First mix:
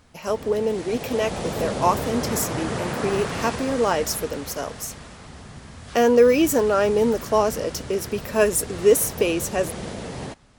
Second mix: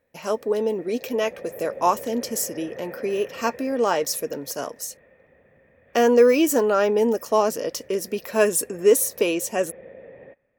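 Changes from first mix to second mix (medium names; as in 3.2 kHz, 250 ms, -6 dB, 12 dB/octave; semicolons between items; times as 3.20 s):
background: add cascade formant filter e; master: add bass shelf 65 Hz -10 dB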